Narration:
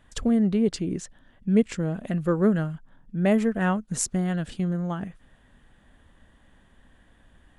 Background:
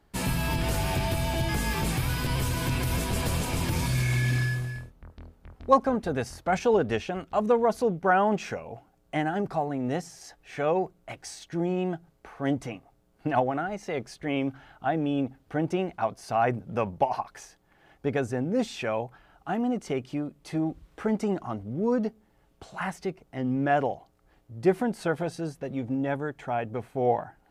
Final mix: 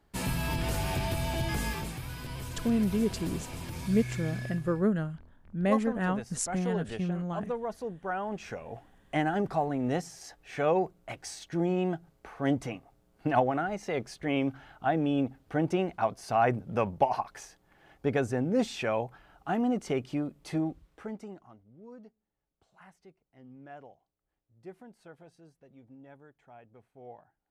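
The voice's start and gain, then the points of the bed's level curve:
2.40 s, −5.5 dB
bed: 0:01.66 −3.5 dB
0:01.94 −11.5 dB
0:08.27 −11.5 dB
0:08.75 −0.5 dB
0:20.53 −0.5 dB
0:21.63 −23.5 dB

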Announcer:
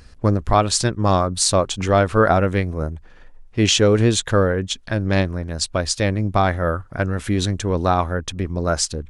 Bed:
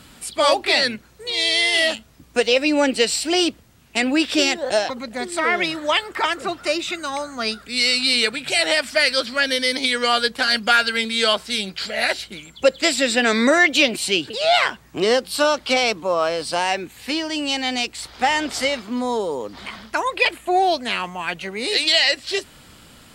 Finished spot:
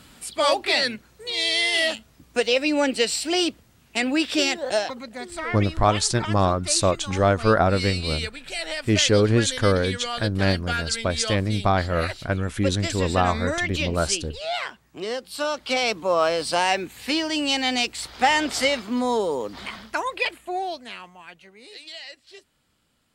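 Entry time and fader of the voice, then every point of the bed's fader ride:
5.30 s, −3.0 dB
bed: 0:04.77 −3.5 dB
0:05.61 −11.5 dB
0:15.16 −11.5 dB
0:16.17 0 dB
0:19.60 0 dB
0:21.74 −22.5 dB

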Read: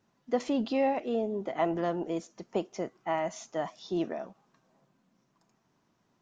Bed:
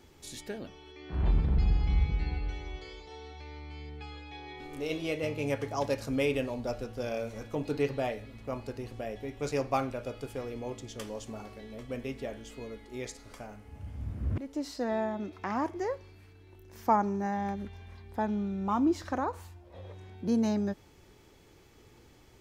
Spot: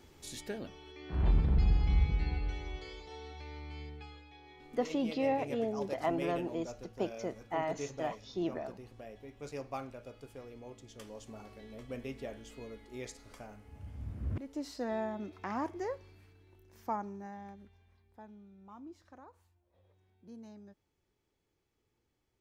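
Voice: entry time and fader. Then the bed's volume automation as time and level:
4.45 s, −4.0 dB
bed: 0:03.82 −1 dB
0:04.34 −11 dB
0:10.74 −11 dB
0:11.69 −4.5 dB
0:16.16 −4.5 dB
0:18.42 −23 dB

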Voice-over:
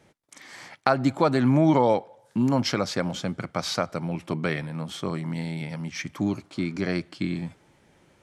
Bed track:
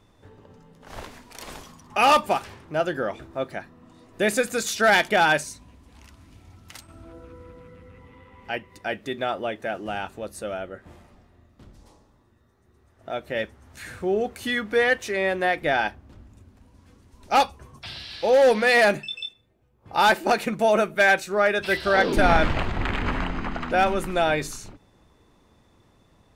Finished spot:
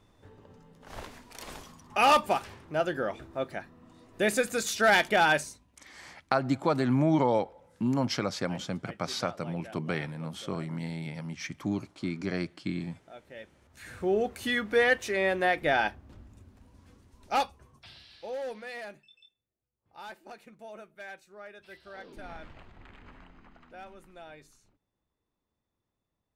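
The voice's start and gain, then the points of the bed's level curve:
5.45 s, −5.0 dB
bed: 0:05.44 −4 dB
0:05.70 −18 dB
0:13.45 −18 dB
0:14.03 −3 dB
0:16.90 −3 dB
0:19.04 −26 dB

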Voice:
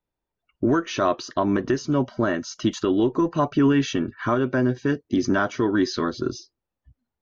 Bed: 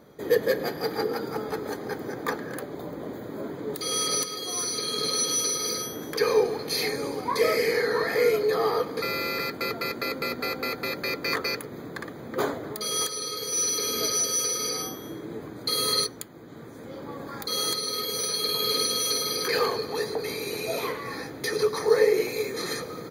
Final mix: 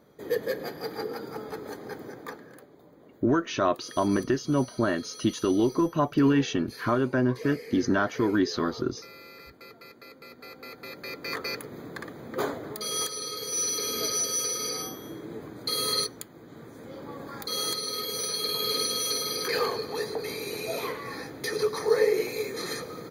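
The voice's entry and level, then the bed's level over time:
2.60 s, −3.0 dB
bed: 0:02.01 −6 dB
0:02.78 −18.5 dB
0:10.19 −18.5 dB
0:11.65 −2.5 dB

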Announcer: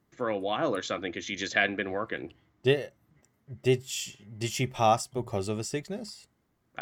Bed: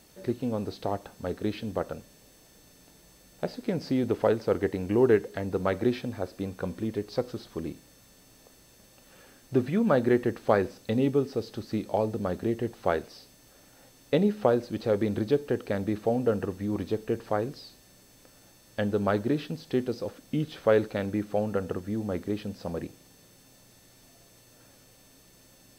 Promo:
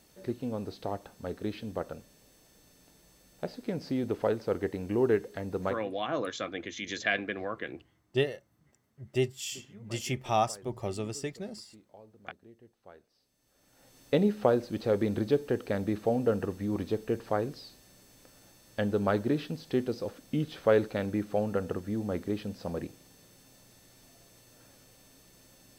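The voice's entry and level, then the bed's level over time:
5.50 s, −3.5 dB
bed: 0:05.68 −4.5 dB
0:05.92 −26.5 dB
0:13.07 −26.5 dB
0:13.97 −1.5 dB

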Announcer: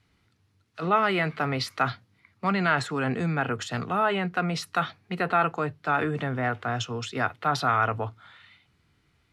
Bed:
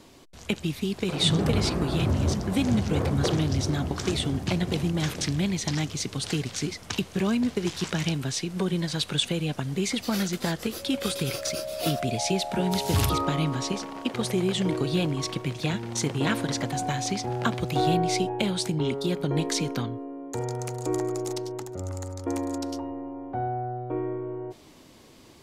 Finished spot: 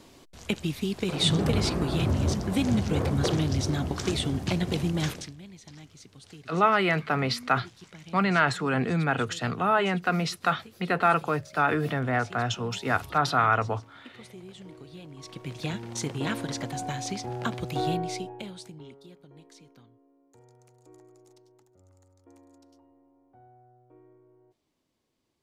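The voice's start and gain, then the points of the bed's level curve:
5.70 s, +1.0 dB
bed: 0:05.10 −1 dB
0:05.36 −20 dB
0:15.03 −20 dB
0:15.57 −4.5 dB
0:17.90 −4.5 dB
0:19.29 −26.5 dB

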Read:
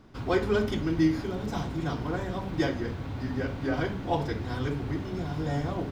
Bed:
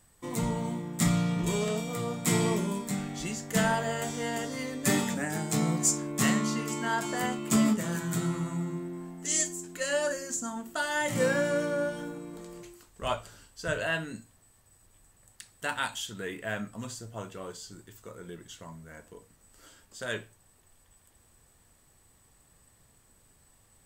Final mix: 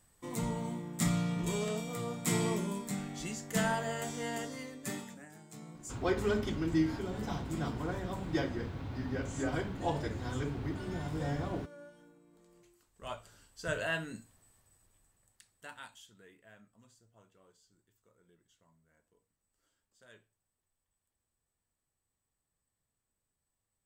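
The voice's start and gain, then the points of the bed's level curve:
5.75 s, −5.5 dB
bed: 0:04.42 −5 dB
0:05.37 −22 dB
0:12.24 −22 dB
0:13.69 −4 dB
0:14.49 −4 dB
0:16.51 −24.5 dB

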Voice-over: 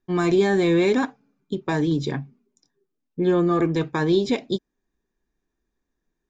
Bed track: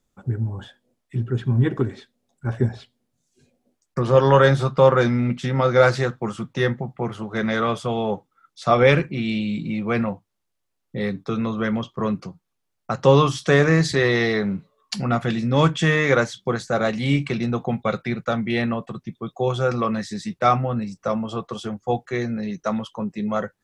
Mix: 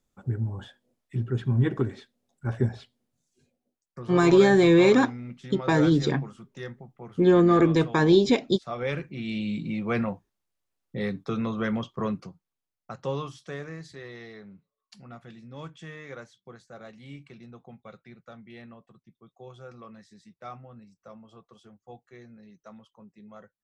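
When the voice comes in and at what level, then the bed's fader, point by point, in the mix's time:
4.00 s, +1.5 dB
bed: 0:03.20 −4 dB
0:03.92 −17 dB
0:08.74 −17 dB
0:09.48 −4.5 dB
0:11.98 −4.5 dB
0:13.82 −23.5 dB

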